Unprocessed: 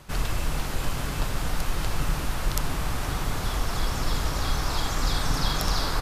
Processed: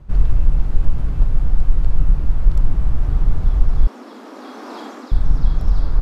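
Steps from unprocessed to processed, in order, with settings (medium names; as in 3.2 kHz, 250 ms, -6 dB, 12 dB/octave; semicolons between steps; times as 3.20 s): tilt EQ -4.5 dB/octave; 3.87–5.12 s: steep high-pass 220 Hz 96 dB/octave; level rider; trim -1 dB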